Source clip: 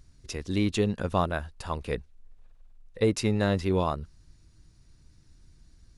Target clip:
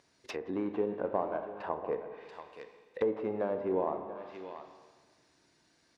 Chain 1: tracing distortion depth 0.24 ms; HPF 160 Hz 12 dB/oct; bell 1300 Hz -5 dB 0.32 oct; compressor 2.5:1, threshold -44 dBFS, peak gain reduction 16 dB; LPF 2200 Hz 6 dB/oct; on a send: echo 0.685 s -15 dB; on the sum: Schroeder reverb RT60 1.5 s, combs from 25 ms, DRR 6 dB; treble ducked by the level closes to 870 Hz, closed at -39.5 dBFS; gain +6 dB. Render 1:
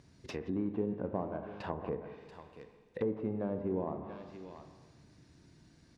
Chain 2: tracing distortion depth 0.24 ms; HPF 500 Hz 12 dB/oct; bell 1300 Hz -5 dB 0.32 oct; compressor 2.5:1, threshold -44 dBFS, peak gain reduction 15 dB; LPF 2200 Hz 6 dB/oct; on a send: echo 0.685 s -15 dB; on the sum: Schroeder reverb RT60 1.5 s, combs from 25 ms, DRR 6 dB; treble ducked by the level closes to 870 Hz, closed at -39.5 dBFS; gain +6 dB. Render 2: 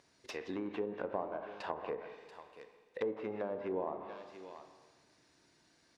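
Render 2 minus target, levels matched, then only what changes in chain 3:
compressor: peak gain reduction +6 dB
change: compressor 2.5:1, threshold -34 dBFS, peak gain reduction 9 dB

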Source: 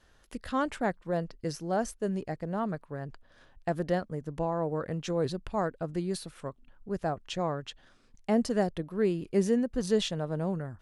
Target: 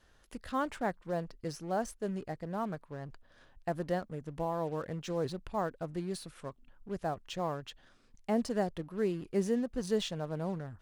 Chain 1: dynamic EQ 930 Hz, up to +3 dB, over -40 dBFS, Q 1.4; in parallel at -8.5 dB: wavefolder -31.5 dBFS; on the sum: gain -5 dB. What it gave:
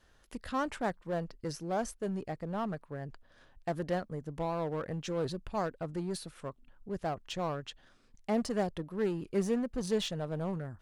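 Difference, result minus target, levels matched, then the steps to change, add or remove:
wavefolder: distortion -19 dB
change: wavefolder -43.5 dBFS

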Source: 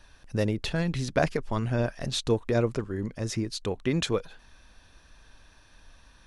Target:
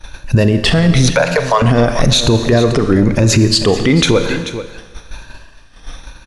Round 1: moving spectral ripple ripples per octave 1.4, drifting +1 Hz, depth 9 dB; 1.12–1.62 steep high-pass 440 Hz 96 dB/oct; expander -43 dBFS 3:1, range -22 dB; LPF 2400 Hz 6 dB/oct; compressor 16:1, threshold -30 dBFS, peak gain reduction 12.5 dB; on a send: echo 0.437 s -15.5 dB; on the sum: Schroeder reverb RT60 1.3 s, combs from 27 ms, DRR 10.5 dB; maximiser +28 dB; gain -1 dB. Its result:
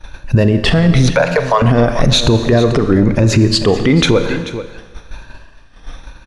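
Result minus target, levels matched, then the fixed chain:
8000 Hz band -5.0 dB
moving spectral ripple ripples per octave 1.4, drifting +1 Hz, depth 9 dB; 1.12–1.62 steep high-pass 440 Hz 96 dB/oct; expander -43 dBFS 3:1, range -22 dB; LPF 8800 Hz 6 dB/oct; compressor 16:1, threshold -30 dBFS, peak gain reduction 12.5 dB; on a send: echo 0.437 s -15.5 dB; on the sum: Schroeder reverb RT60 1.3 s, combs from 27 ms, DRR 10.5 dB; maximiser +28 dB; gain -1 dB

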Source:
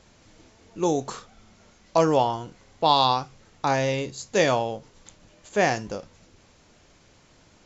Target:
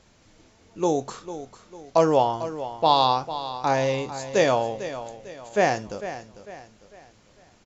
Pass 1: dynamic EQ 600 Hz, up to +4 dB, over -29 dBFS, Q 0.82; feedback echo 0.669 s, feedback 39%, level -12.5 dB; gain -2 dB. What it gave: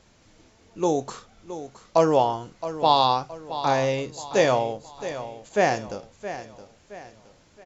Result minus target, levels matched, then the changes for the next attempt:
echo 0.22 s late
change: feedback echo 0.449 s, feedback 39%, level -12.5 dB

